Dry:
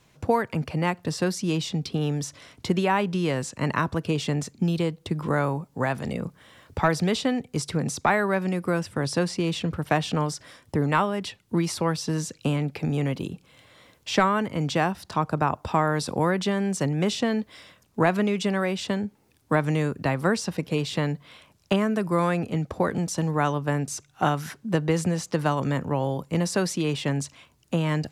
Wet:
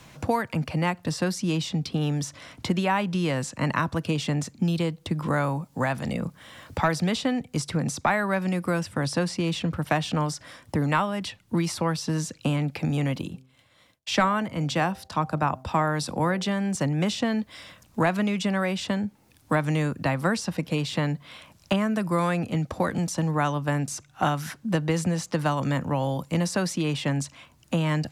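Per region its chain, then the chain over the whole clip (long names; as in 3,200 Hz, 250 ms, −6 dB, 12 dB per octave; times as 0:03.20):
0:13.21–0:16.75: downward expander −50 dBFS + hum removal 129.9 Hz, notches 6 + multiband upward and downward expander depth 40%
whole clip: parametric band 410 Hz −8 dB 0.32 octaves; multiband upward and downward compressor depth 40%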